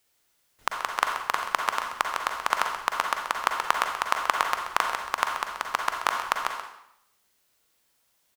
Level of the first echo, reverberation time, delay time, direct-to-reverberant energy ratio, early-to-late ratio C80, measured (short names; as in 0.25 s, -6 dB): -10.5 dB, 0.75 s, 0.131 s, 2.0 dB, 6.0 dB